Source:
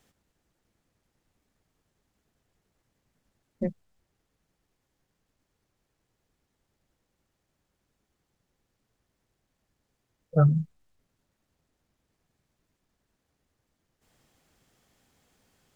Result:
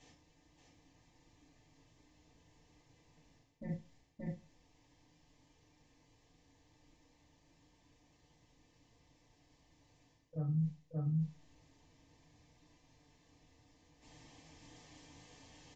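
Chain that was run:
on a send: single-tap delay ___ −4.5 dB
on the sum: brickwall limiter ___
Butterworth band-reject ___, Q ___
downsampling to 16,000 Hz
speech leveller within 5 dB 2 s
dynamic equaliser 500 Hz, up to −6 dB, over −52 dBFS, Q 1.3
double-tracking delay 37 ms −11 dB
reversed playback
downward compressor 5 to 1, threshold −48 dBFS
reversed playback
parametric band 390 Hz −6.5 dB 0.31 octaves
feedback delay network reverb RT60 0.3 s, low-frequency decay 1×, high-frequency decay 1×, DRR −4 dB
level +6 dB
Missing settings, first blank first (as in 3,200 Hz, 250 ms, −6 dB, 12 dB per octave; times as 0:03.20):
577 ms, −21.5 dBFS, 1,400 Hz, 3.6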